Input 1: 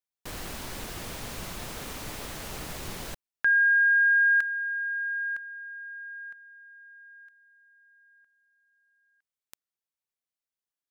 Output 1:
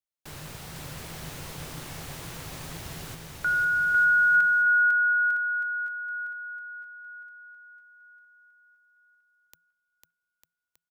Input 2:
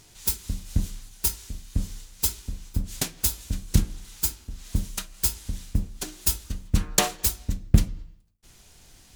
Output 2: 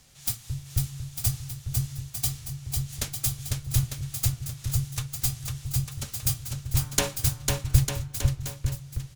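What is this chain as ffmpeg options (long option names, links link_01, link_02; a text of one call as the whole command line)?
ffmpeg -i in.wav -af "afreqshift=-170,aecho=1:1:500|900|1220|1476|1681:0.631|0.398|0.251|0.158|0.1,volume=-3.5dB" out.wav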